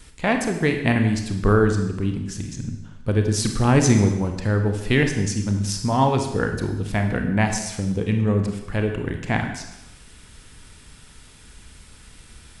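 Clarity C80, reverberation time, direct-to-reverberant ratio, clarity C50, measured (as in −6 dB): 9.0 dB, 0.95 s, 4.5 dB, 6.5 dB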